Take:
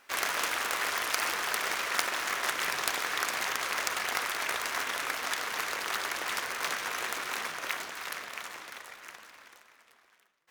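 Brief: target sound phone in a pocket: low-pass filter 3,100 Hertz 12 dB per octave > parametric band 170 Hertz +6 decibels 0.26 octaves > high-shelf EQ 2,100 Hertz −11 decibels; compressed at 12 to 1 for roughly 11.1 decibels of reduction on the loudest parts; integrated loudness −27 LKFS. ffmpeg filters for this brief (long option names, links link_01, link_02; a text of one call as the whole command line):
ffmpeg -i in.wav -af "acompressor=threshold=-36dB:ratio=12,lowpass=3100,equalizer=frequency=170:width_type=o:width=0.26:gain=6,highshelf=frequency=2100:gain=-11,volume=18dB" out.wav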